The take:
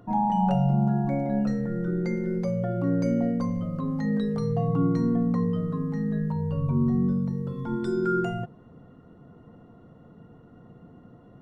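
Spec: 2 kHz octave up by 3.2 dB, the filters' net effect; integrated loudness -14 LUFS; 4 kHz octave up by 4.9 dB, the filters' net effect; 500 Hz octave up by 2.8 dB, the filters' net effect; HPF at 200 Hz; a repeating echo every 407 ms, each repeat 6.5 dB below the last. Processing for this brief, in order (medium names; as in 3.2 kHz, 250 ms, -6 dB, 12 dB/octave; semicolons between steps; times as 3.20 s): high-pass 200 Hz; peaking EQ 500 Hz +3.5 dB; peaking EQ 2 kHz +3.5 dB; peaking EQ 4 kHz +5 dB; feedback delay 407 ms, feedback 47%, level -6.5 dB; trim +13 dB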